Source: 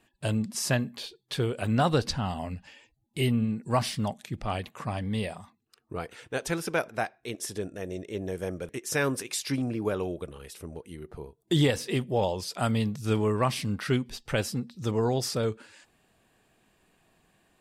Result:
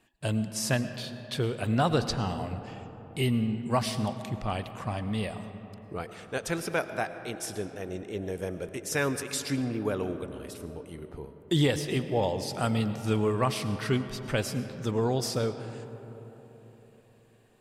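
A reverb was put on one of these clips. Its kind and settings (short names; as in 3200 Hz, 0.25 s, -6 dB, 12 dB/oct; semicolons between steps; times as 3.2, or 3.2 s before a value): digital reverb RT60 4 s, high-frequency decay 0.35×, pre-delay 65 ms, DRR 10 dB; gain -1 dB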